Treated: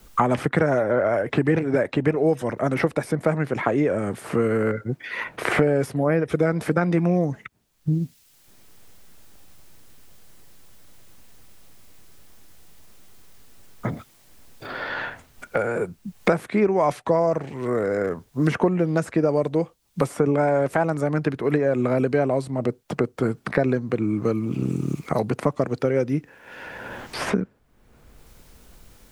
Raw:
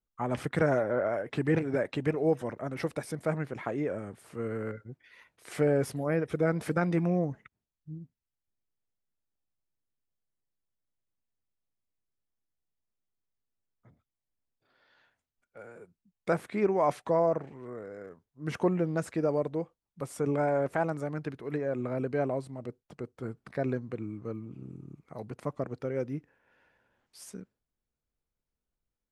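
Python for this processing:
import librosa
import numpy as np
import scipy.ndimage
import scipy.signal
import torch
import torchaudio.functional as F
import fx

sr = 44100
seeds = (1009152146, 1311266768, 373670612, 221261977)

y = fx.band_squash(x, sr, depth_pct=100)
y = y * librosa.db_to_amplitude(8.5)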